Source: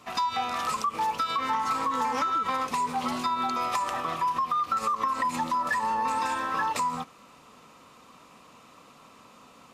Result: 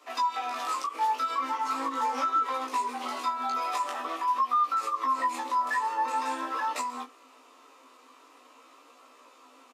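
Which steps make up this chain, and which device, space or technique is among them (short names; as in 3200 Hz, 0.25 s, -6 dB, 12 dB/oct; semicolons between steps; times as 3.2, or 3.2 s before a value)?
double-tracked vocal (doubler 15 ms -5.5 dB; chorus 0.44 Hz, delay 16.5 ms, depth 6.5 ms); Chebyshev high-pass 250 Hz, order 8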